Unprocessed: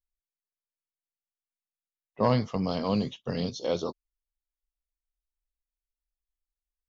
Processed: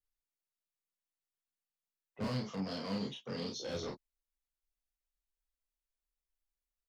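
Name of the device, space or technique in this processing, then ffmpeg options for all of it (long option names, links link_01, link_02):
one-band saturation: -filter_complex "[0:a]acrossover=split=210|4100[link_01][link_02][link_03];[link_02]asoftclip=type=tanh:threshold=-36dB[link_04];[link_01][link_04][link_03]amix=inputs=3:normalize=0,asettb=1/sr,asplit=3[link_05][link_06][link_07];[link_05]atrim=end=2.244[link_08];[link_06]atrim=start=2.24:end=3.62,asetpts=PTS-STARTPTS,afade=type=in:duration=0.004:curve=qsin,afade=type=out:start_time=1.376:duration=0.004:curve=qsin,highpass=210[link_09];[link_07]atrim=start=3.616[link_10];[link_08][link_09]acrossfade=duration=0.004:curve1=hsin:curve2=qsin[link_11];[link_11][link_10]acrossfade=duration=0.004:curve1=qsin:curve2=hsin,aecho=1:1:31|45:0.668|0.398,volume=-4.5dB"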